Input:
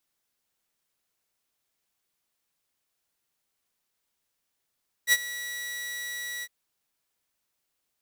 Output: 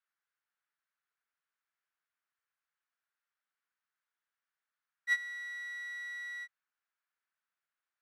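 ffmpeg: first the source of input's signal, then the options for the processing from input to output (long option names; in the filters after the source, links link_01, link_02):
-f lavfi -i "aevalsrc='0.211*(2*mod(1940*t,1)-1)':duration=1.407:sample_rate=44100,afade=type=in:duration=0.055,afade=type=out:start_time=0.055:duration=0.041:silence=0.141,afade=type=out:start_time=1.36:duration=0.047"
-af "bandpass=frequency=1500:width_type=q:width=2.7:csg=0"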